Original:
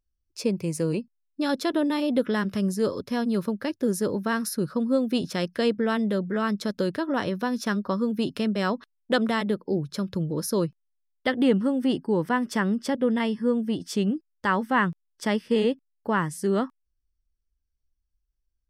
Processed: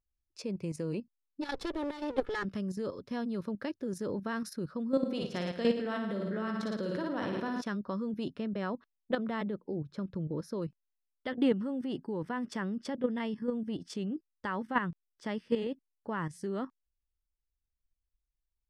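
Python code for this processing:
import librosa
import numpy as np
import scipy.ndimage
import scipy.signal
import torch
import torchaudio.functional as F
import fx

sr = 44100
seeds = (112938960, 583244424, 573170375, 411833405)

y = fx.lower_of_two(x, sr, delay_ms=2.3, at=(1.41, 2.43), fade=0.02)
y = fx.room_flutter(y, sr, wall_m=9.5, rt60_s=0.87, at=(4.91, 7.62))
y = fx.high_shelf(y, sr, hz=3500.0, db=-11.0, at=(8.34, 10.62))
y = scipy.signal.sosfilt(scipy.signal.butter(2, 10000.0, 'lowpass', fs=sr, output='sos'), y)
y = fx.high_shelf(y, sr, hz=6200.0, db=-9.0)
y = fx.level_steps(y, sr, step_db=10)
y = F.gain(torch.from_numpy(y), -4.0).numpy()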